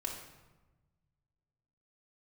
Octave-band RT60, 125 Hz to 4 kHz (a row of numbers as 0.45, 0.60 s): 2.4, 1.6, 1.2, 1.1, 0.95, 0.75 s